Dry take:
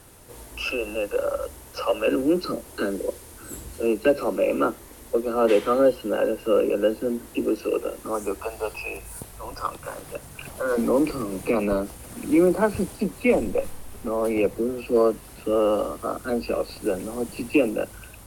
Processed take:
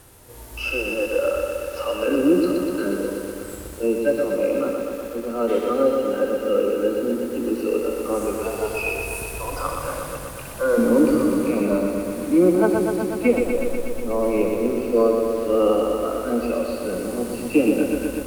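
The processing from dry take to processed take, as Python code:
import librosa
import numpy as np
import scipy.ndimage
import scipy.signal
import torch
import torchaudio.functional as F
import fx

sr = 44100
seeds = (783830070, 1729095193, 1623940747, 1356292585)

y = fx.rider(x, sr, range_db=10, speed_s=2.0)
y = fx.hpss(y, sr, part='percussive', gain_db=-13)
y = fx.echo_crushed(y, sr, ms=122, feedback_pct=80, bits=8, wet_db=-4.5)
y = y * librosa.db_to_amplitude(2.0)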